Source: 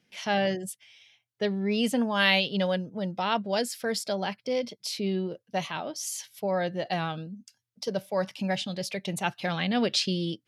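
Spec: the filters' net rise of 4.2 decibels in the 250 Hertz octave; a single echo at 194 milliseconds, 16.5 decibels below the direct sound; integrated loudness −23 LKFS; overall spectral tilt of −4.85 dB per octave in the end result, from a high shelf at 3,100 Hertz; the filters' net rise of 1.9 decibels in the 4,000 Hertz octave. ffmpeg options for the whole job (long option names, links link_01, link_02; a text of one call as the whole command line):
ffmpeg -i in.wav -af "equalizer=frequency=250:width_type=o:gain=5.5,highshelf=frequency=3100:gain=-4,equalizer=frequency=4000:width_type=o:gain=5.5,aecho=1:1:194:0.15,volume=4dB" out.wav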